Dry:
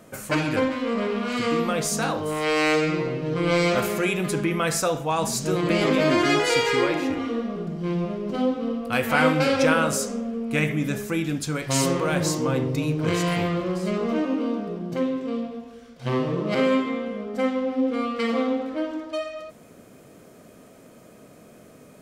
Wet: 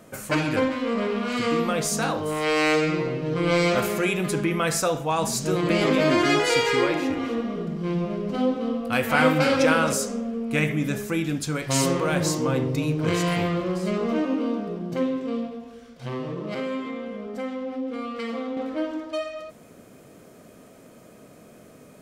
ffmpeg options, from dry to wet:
-filter_complex "[0:a]asettb=1/sr,asplit=3[a][b][c];[a]atrim=end=6.964[d];[b]atrim=start=6.96:end=9.93,asetpts=PTS-STARTPTS,afade=t=in:d=0.004:c=qsin,afade=t=out:st=2.966:d=0.004:c=qsin,aecho=1:1:268:0.282,atrim=end_sample=130977[e];[c]atrim=start=9.926[f];[d][e]acrossfade=d=0.004:c1=hsin:c2=qsin[g];[g][f]acrossfade=d=0.004:c1=qsin:c2=hsin,asettb=1/sr,asplit=3[h][i][j];[h]atrim=end=15.484[k];[i]atrim=start=15.48:end=18.57,asetpts=PTS-STARTPTS,afade=t=in:d=0.004:c=qsin,afade=t=out:st=3.086:d=0.004:c=qsin,acompressor=threshold=-32dB:ratio=2:attack=3.2:release=140:knee=1:detection=peak[l];[j]atrim=start=18.566[m];[k][l]acrossfade=d=0.004:c1=hsin:c2=qsin[n];[n][m]acrossfade=d=0.004:c1=qsin:c2=hsin"

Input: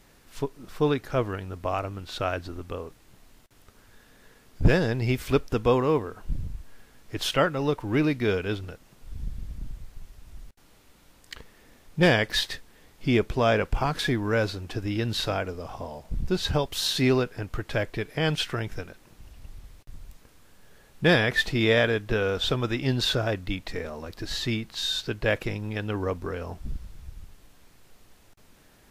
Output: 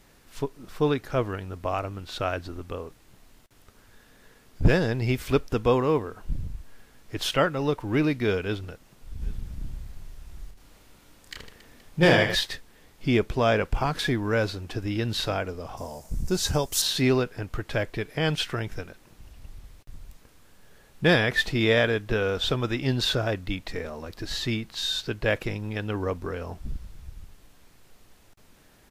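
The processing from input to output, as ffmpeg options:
-filter_complex "[0:a]asplit=3[a][b][c];[a]afade=t=out:st=9.2:d=0.02[d];[b]aecho=1:1:30|78|154.8|277.7|474.3|788.9:0.631|0.398|0.251|0.158|0.1|0.0631,afade=t=in:st=9.2:d=0.02,afade=t=out:st=12.34:d=0.02[e];[c]afade=t=in:st=12.34:d=0.02[f];[d][e][f]amix=inputs=3:normalize=0,asettb=1/sr,asplit=3[g][h][i];[g]atrim=end=15.774[j];[h]atrim=start=15.77:end=16.82,asetpts=PTS-STARTPTS,afade=t=in:d=0.004:c=qsin,afade=t=out:st=1.046:d=0.004:c=qsin,highshelf=f=4.8k:t=q:w=1.5:g=10[k];[i]atrim=start=16.816[l];[j][k]acrossfade=d=0.004:c1=hsin:c2=qsin[m];[m][l]acrossfade=d=0.004:c1=qsin:c2=hsin"

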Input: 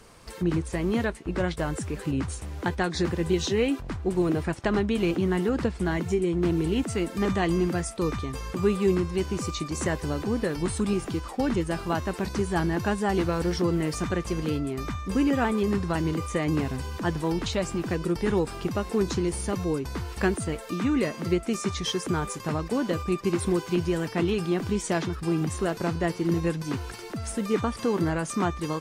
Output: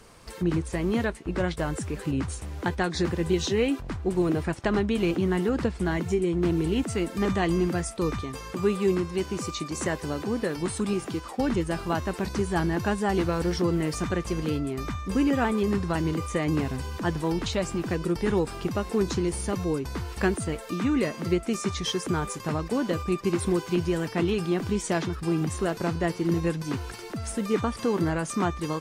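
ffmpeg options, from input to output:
-filter_complex "[0:a]asettb=1/sr,asplit=3[a][b][c];[a]atrim=end=8.214[d];[b]atrim=start=8.21:end=11.39,asetpts=PTS-STARTPTS,afade=t=in:d=0.004:c=qsin,afade=t=out:st=3.176:d=0.004:c=qsin,highpass=f=140:p=1[e];[c]atrim=start=11.386[f];[d][e]acrossfade=d=0.004:c1=hsin:c2=qsin[g];[g][f]acrossfade=d=0.004:c1=qsin:c2=hsin"

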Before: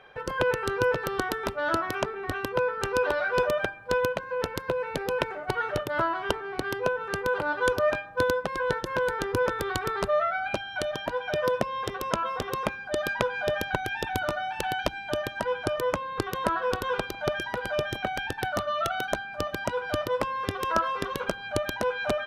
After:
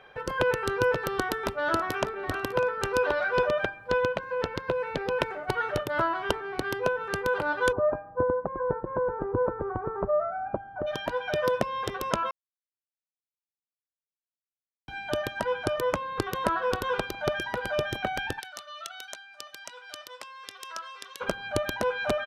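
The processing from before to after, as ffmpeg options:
-filter_complex "[0:a]asplit=2[a][b];[b]afade=t=in:st=1.07:d=0.01,afade=t=out:st=2.06:d=0.01,aecho=0:1:600|1200:0.158489|0.0396223[c];[a][c]amix=inputs=2:normalize=0,asettb=1/sr,asplit=3[d][e][f];[d]atrim=end=3.064[g];[e]atrim=start=3.06:end=5.19,asetpts=PTS-STARTPTS,afade=t=in:d=0.004:c=qsin,afade=t=out:st=2.126:d=0.004:c=qsin,acrossover=split=5600[h][i];[i]acompressor=threshold=-57dB:ratio=4:attack=1:release=60[j];[h][j]amix=inputs=2:normalize=0[k];[f]atrim=start=5.186[l];[g][k]acrossfade=d=0.004:c1=hsin:c2=qsin[m];[m][l]acrossfade=d=0.004:c1=qsin:c2=hsin,asplit=3[n][o][p];[n]afade=t=out:st=7.71:d=0.02[q];[o]lowpass=f=1.1k:w=0.5412,lowpass=f=1.1k:w=1.3066,afade=t=in:st=7.71:d=0.02,afade=t=out:st=10.86:d=0.02[r];[p]afade=t=in:st=10.86:d=0.02[s];[q][r][s]amix=inputs=3:normalize=0,asplit=3[t][u][v];[t]afade=t=out:st=18.39:d=0.02[w];[u]bandpass=f=6.7k:t=q:w=0.81,afade=t=in:st=18.39:d=0.02,afade=t=out:st=21.2:d=0.02[x];[v]afade=t=in:st=21.2:d=0.02[y];[w][x][y]amix=inputs=3:normalize=0,asplit=3[z][aa][ab];[z]atrim=end=12.31,asetpts=PTS-STARTPTS,afade=t=out:st=12.306:d=0.004:c=hsin[ac];[aa]atrim=start=12.31:end=14.88,asetpts=PTS-STARTPTS,volume=0[ad];[ab]atrim=start=14.88,asetpts=PTS-STARTPTS,afade=t=in:d=0.004:c=hsin[ae];[ac][ad][ae]concat=n=3:v=0:a=1"

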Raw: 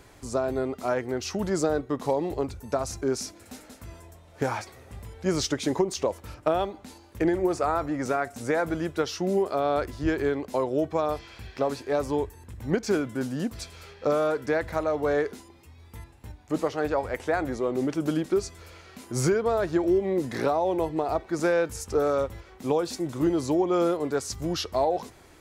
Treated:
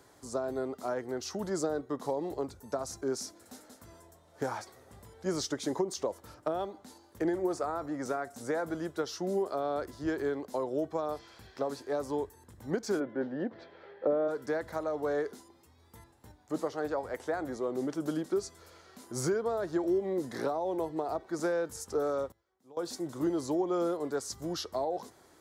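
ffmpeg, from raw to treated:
-filter_complex "[0:a]asplit=3[a][b][c];[a]afade=t=out:st=12.99:d=0.02[d];[b]highpass=150,equalizer=f=350:t=q:w=4:g=8,equalizer=f=550:t=q:w=4:g=8,equalizer=f=810:t=q:w=4:g=4,equalizer=f=1.2k:t=q:w=4:g=-4,equalizer=f=1.8k:t=q:w=4:g=6,equalizer=f=2.6k:t=q:w=4:g=-3,lowpass=f=3k:w=0.5412,lowpass=f=3k:w=1.3066,afade=t=in:st=12.99:d=0.02,afade=t=out:st=14.27:d=0.02[e];[c]afade=t=in:st=14.27:d=0.02[f];[d][e][f]amix=inputs=3:normalize=0,asplit=3[g][h][i];[g]atrim=end=22.32,asetpts=PTS-STARTPTS,afade=t=out:st=22.14:d=0.18:c=log:silence=0.0707946[j];[h]atrim=start=22.32:end=22.77,asetpts=PTS-STARTPTS,volume=-23dB[k];[i]atrim=start=22.77,asetpts=PTS-STARTPTS,afade=t=in:d=0.18:c=log:silence=0.0707946[l];[j][k][l]concat=n=3:v=0:a=1,highpass=f=230:p=1,equalizer=f=2.5k:w=2.3:g=-10,acrossover=split=440[m][n];[n]acompressor=threshold=-27dB:ratio=6[o];[m][o]amix=inputs=2:normalize=0,volume=-4.5dB"

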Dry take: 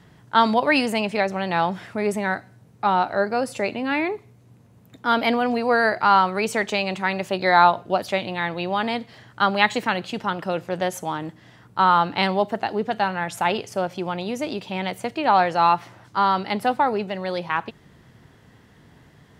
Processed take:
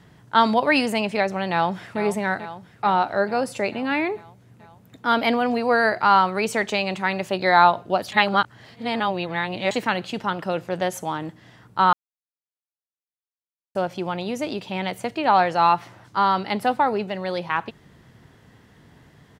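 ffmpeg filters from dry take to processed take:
-filter_complex "[0:a]asplit=2[a][b];[b]afade=t=in:st=1.51:d=0.01,afade=t=out:st=2.01:d=0.01,aecho=0:1:440|880|1320|1760|2200|2640|3080|3520|3960|4400:0.266073|0.186251|0.130376|0.0912629|0.063884|0.0447188|0.0313032|0.0219122|0.0153386|0.010737[c];[a][c]amix=inputs=2:normalize=0,asplit=5[d][e][f][g][h];[d]atrim=end=8.122[i];[e]atrim=start=8.118:end=9.712,asetpts=PTS-STARTPTS,areverse[j];[f]atrim=start=9.708:end=11.93,asetpts=PTS-STARTPTS,afade=t=out:st=2.218:d=0.004:c=hsin[k];[g]atrim=start=11.93:end=13.75,asetpts=PTS-STARTPTS,volume=0[l];[h]atrim=start=13.75,asetpts=PTS-STARTPTS,afade=t=in:d=0.004:c=hsin[m];[i][j]acrossfade=d=0.004:c1=hsin:c2=hsin[n];[k][l][m]concat=n=3:v=0:a=1[o];[n][o]acrossfade=d=0.004:c1=hsin:c2=hsin"

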